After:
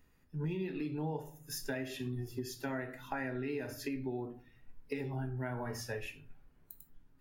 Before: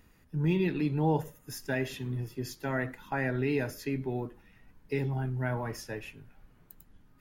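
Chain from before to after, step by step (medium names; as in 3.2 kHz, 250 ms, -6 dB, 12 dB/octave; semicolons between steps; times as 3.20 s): simulated room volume 46 m³, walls mixed, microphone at 0.31 m; spectral noise reduction 10 dB; compression 6:1, threshold -36 dBFS, peak gain reduction 14.5 dB; trim +1 dB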